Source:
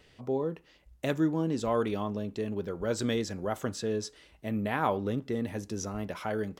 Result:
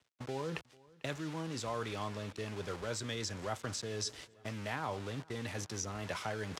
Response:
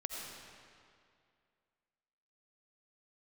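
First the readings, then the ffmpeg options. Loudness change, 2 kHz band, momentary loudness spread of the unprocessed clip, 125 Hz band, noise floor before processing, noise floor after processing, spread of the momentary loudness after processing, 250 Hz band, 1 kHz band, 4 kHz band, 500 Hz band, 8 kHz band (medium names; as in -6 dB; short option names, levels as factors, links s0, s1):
-8.0 dB, -3.0 dB, 7 LU, -5.5 dB, -61 dBFS, -63 dBFS, 4 LU, -12.0 dB, -6.5 dB, +0.5 dB, -9.5 dB, +1.0 dB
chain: -filter_complex "[0:a]bass=f=250:g=6,treble=f=4000:g=5,areverse,acompressor=threshold=0.01:ratio=20,areverse,aeval=exprs='val(0)*gte(abs(val(0)),0.00211)':c=same,acrossover=split=120|690[s0][s1][s2];[s0]acompressor=threshold=0.00126:ratio=4[s3];[s1]acompressor=threshold=0.00141:ratio=4[s4];[s2]acompressor=threshold=0.00316:ratio=4[s5];[s3][s4][s5]amix=inputs=3:normalize=0,highpass=93,equalizer=f=200:t=o:w=0.52:g=-5.5,agate=range=0.0501:threshold=0.00112:ratio=16:detection=peak,lowpass=8000,asplit=2[s6][s7];[s7]aecho=0:1:446|892|1338:0.0631|0.0322|0.0164[s8];[s6][s8]amix=inputs=2:normalize=0,volume=5.01"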